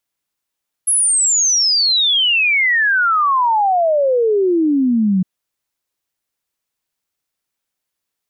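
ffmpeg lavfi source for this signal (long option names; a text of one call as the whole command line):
ffmpeg -f lavfi -i "aevalsrc='0.266*clip(min(t,4.36-t)/0.01,0,1)*sin(2*PI*11000*4.36/log(180/11000)*(exp(log(180/11000)*t/4.36)-1))':duration=4.36:sample_rate=44100" out.wav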